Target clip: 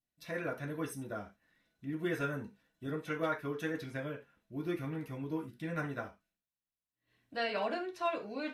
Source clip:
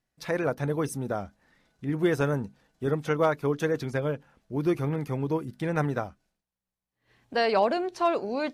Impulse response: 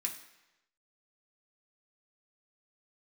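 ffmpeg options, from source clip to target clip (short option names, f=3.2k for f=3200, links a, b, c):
-filter_complex "[0:a]adynamicequalizer=threshold=0.00891:dfrequency=1700:dqfactor=0.97:tfrequency=1700:tqfactor=0.97:attack=5:release=100:ratio=0.375:range=3.5:mode=boostabove:tftype=bell[a];[1:a]atrim=start_sample=2205,atrim=end_sample=6615,asetrate=66150,aresample=44100[b];[a][b]afir=irnorm=-1:irlink=0,volume=-6.5dB"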